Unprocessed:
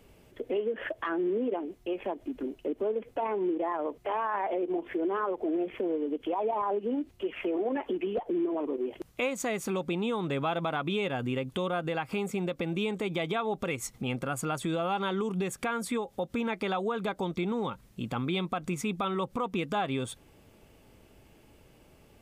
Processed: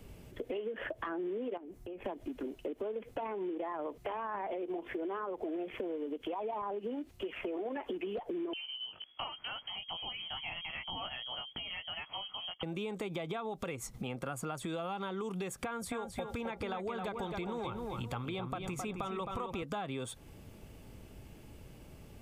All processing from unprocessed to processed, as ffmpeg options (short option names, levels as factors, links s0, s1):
-filter_complex "[0:a]asettb=1/sr,asplit=3[s0][s1][s2];[s0]atrim=end=1.574[s3];[s1]atrim=start=1.57:end=2.05,asetpts=PTS-STARTPTS,afade=t=in:d=0.004:c=qsin,afade=t=out:st=0.476:d=0.004:c=qsin,equalizer=f=3400:t=o:w=1.3:g=-6,acompressor=threshold=0.00562:ratio=4:attack=3.2:release=140:knee=1:detection=peak[s4];[s2]atrim=start=2.046[s5];[s3][s4]acrossfade=d=0.004:c1=hsin:c2=qsin[s6];[s6][s5]acrossfade=d=0.004:c1=qsin:c2=hsin,asettb=1/sr,asplit=3[s7][s8][s9];[s7]atrim=end=8.534[s10];[s8]atrim=start=8.53:end=12.63,asetpts=PTS-STARTPTS,afade=t=in:d=0.004:c=qsin,afade=t=out:st=4.096:d=0.004:c=qsin,flanger=delay=15.5:depth=3.9:speed=1.2,lowpass=f=2900:t=q:w=0.5098,lowpass=f=2900:t=q:w=0.6013,lowpass=f=2900:t=q:w=0.9,lowpass=f=2900:t=q:w=2.563,afreqshift=-3400[s11];[s9]atrim=start=12.626[s12];[s10][s11]acrossfade=d=0.004:c1=hsin:c2=qsin[s13];[s13][s12]acrossfade=d=0.004:c1=qsin:c2=hsin,asettb=1/sr,asplit=3[s14][s15][s16];[s14]atrim=end=15.654[s17];[s15]atrim=start=15.65:end=19.63,asetpts=PTS-STARTPTS,afade=t=in:d=0.004:c=qsin,afade=t=out:st=3.976:d=0.004:c=qsin,lowshelf=f=130:t=q:w=1.5:g=8.5,asplit=2[s18][s19];[s19]adelay=264,lowpass=f=3300:p=1,volume=0.473,asplit=2[s20][s21];[s21]adelay=264,lowpass=f=3300:p=1,volume=0.39,asplit=2[s22][s23];[s23]adelay=264,lowpass=f=3300:p=1,volume=0.39,asplit=2[s24][s25];[s25]adelay=264,lowpass=f=3300:p=1,volume=0.39,asplit=2[s26][s27];[s27]adelay=264,lowpass=f=3300:p=1,volume=0.39[s28];[s18][s20][s22][s24][s26][s28]amix=inputs=6:normalize=0,atrim=end_sample=175518[s29];[s16]atrim=start=19.626[s30];[s17][s29]acrossfade=d=0.004:c1=hsin:c2=qsin[s31];[s31][s30]acrossfade=d=0.004:c1=qsin:c2=hsin,acrossover=split=410|1300[s32][s33][s34];[s32]acompressor=threshold=0.00501:ratio=4[s35];[s33]acompressor=threshold=0.0178:ratio=4[s36];[s34]acompressor=threshold=0.00631:ratio=4[s37];[s35][s36][s37]amix=inputs=3:normalize=0,bass=f=250:g=7,treble=f=4000:g=2,acompressor=threshold=0.0141:ratio=2.5,volume=1.12"